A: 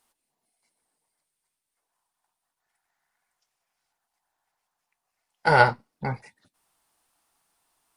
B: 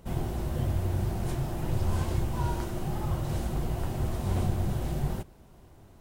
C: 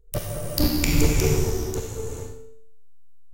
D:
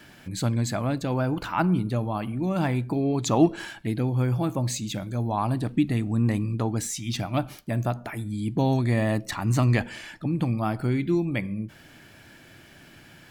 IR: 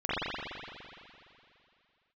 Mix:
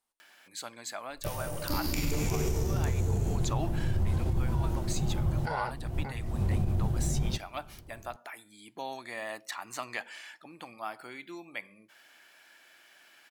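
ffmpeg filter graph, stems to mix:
-filter_complex "[0:a]alimiter=limit=-13dB:level=0:latency=1,volume=-12dB,asplit=2[a][b];[1:a]lowshelf=f=410:g=10.5,adelay=2150,volume=-7dB[c];[2:a]bandreject=f=60:t=h:w=6,bandreject=f=120:t=h:w=6,bandreject=f=180:t=h:w=6,bandreject=f=240:t=h:w=6,bandreject=f=300:t=h:w=6,adelay=1100,volume=-6dB[d];[3:a]highpass=780,acompressor=mode=upward:threshold=-51dB:ratio=2.5,adelay=200,volume=-5.5dB[e];[b]apad=whole_len=359800[f];[c][f]sidechaincompress=threshold=-53dB:ratio=4:attack=20:release=244[g];[a][g][d][e]amix=inputs=4:normalize=0,alimiter=limit=-20dB:level=0:latency=1:release=52"

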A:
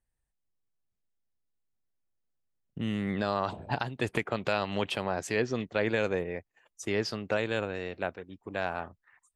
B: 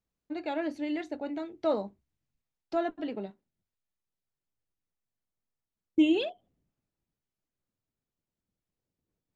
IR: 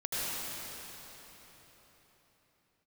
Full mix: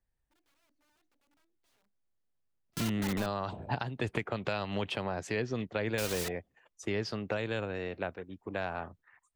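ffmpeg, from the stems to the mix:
-filter_complex "[0:a]aemphasis=mode=reproduction:type=50kf,volume=1dB,asplit=2[a][b];[1:a]aeval=exprs='(mod(35.5*val(0)+1,2)-1)/35.5':c=same,volume=-1.5dB[c];[b]apad=whole_len=412456[d];[c][d]sidechaingate=range=-37dB:threshold=-54dB:ratio=16:detection=peak[e];[a][e]amix=inputs=2:normalize=0,acrossover=split=150|3000[f][g][h];[g]acompressor=threshold=-32dB:ratio=3[i];[f][i][h]amix=inputs=3:normalize=0"

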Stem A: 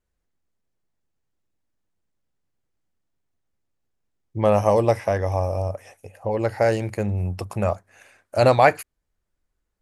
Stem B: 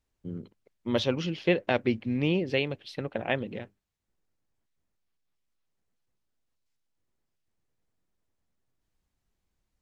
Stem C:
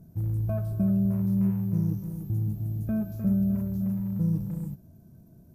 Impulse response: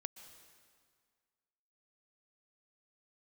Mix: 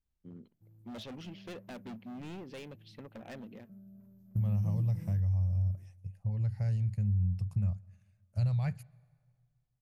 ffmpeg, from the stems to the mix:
-filter_complex "[0:a]firequalizer=gain_entry='entry(180,0);entry(270,-29);entry(4700,-9)':delay=0.05:min_phase=1,agate=range=-8dB:threshold=-56dB:ratio=16:detection=peak,bass=f=250:g=5,treble=f=4k:g=-10,volume=-3.5dB,asplit=3[a][b][c];[b]volume=-16dB[d];[1:a]equalizer=f=230:w=3.8:g=7.5,volume=28dB,asoftclip=hard,volume=-28dB,volume=-13.5dB[e];[2:a]highpass=120,adelay=450,volume=-8.5dB,asplit=2[f][g];[g]volume=-20.5dB[h];[c]apad=whole_len=264442[i];[f][i]sidechaingate=range=-27dB:threshold=-42dB:ratio=16:detection=peak[j];[3:a]atrim=start_sample=2205[k];[d][h]amix=inputs=2:normalize=0[l];[l][k]afir=irnorm=-1:irlink=0[m];[a][e][j][m]amix=inputs=4:normalize=0,acompressor=threshold=-28dB:ratio=3"

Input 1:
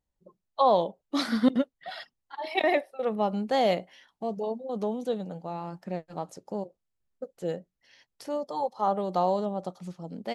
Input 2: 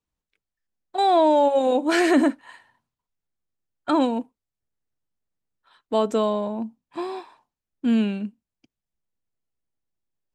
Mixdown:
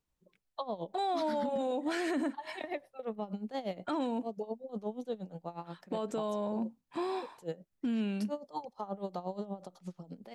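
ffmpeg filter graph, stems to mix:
-filter_complex "[0:a]acrossover=split=340[a][b];[b]acompressor=threshold=-30dB:ratio=4[c];[a][c]amix=inputs=2:normalize=0,aeval=exprs='val(0)*pow(10,-18*(0.5-0.5*cos(2*PI*8.4*n/s))/20)':c=same,volume=-2dB[d];[1:a]acompressor=threshold=-30dB:ratio=4,volume=-0.5dB[e];[d][e]amix=inputs=2:normalize=0,alimiter=level_in=2dB:limit=-24dB:level=0:latency=1:release=12,volume=-2dB"

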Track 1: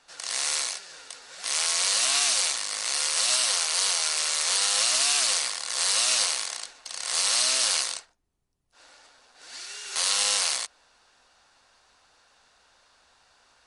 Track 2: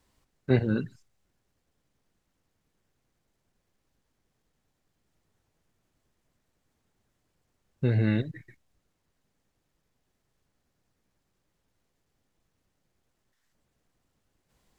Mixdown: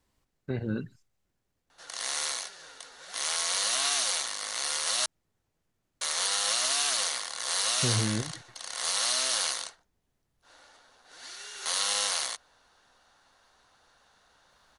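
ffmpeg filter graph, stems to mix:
-filter_complex "[0:a]equalizer=f=2.5k:t=o:w=0.33:g=-7,equalizer=f=5k:t=o:w=0.33:g=-6,equalizer=f=8k:t=o:w=0.33:g=-8,adelay=1700,volume=-1dB,asplit=3[a][b][c];[a]atrim=end=5.06,asetpts=PTS-STARTPTS,afade=t=out:st=5.056:d=0.004:c=hsin[d];[b]atrim=start=5.06:end=6.01,asetpts=PTS-STARTPTS,volume=0[e];[c]atrim=start=6.01,asetpts=PTS-STARTPTS,afade=t=in:d=0.004:c=hsin[f];[d][e][f]concat=n=3:v=0:a=1[g];[1:a]alimiter=limit=-17dB:level=0:latency=1:release=110,volume=-4dB[h];[g][h]amix=inputs=2:normalize=0"

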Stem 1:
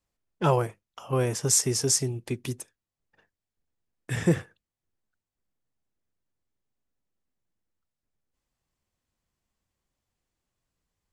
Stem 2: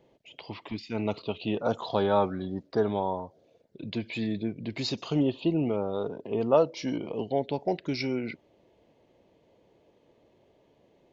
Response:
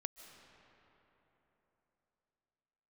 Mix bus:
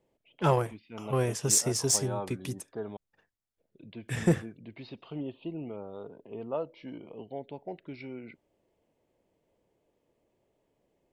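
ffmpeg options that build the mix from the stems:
-filter_complex "[0:a]aeval=exprs='0.398*(cos(1*acos(clip(val(0)/0.398,-1,1)))-cos(1*PI/2))+0.0141*(cos(7*acos(clip(val(0)/0.398,-1,1)))-cos(7*PI/2))':c=same,volume=-1.5dB[a];[1:a]lowpass=f=3.3k:w=0.5412,lowpass=f=3.3k:w=1.3066,volume=-11.5dB,asplit=3[b][c][d];[b]atrim=end=2.97,asetpts=PTS-STARTPTS,afade=t=out:st=2.966:d=0.004:c=hsin[e];[c]atrim=start=2.97:end=3.58,asetpts=PTS-STARTPTS,volume=0[f];[d]atrim=start=3.58,asetpts=PTS-STARTPTS,afade=t=in:d=0.004:c=hsin[g];[e][f][g]concat=n=3:v=0:a=1[h];[a][h]amix=inputs=2:normalize=0"

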